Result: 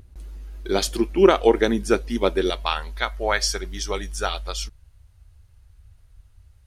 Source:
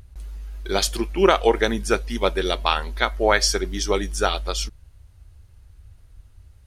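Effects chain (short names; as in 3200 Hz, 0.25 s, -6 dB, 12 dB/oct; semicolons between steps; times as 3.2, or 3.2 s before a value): bell 290 Hz +8 dB 1.5 oct, from 2.5 s -6 dB; gain -3 dB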